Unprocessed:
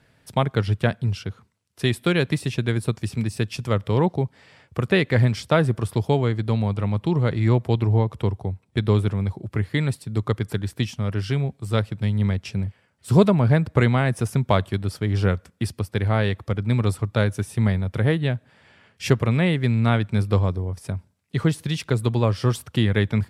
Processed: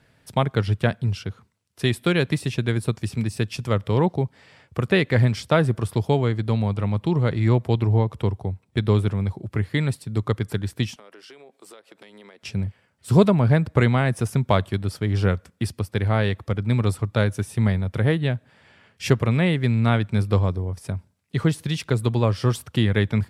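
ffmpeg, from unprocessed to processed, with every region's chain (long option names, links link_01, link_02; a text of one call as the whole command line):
ffmpeg -i in.wav -filter_complex "[0:a]asettb=1/sr,asplit=3[link_01][link_02][link_03];[link_01]atrim=end=10.964[link_04];[link_02]atrim=start=10.96:end=12.43,asetpts=PTS-STARTPTS,afade=type=in:duration=0.004:curve=qsin,afade=type=out:start_time=1.466:duration=0.004:curve=qsin,highpass=frequency=340:width=0.5412,highpass=frequency=340:width=1.3066,acompressor=threshold=-42dB:ratio=12:attack=3.2:release=140:knee=1:detection=peak[link_05];[link_03]atrim=start=12.426[link_06];[link_04][link_05]acrossfade=duration=0.004:curve1=hsin:curve2=qsin[link_07];[link_07][link_06]acrossfade=duration=0.004:curve1=qsin:curve2=hsin" out.wav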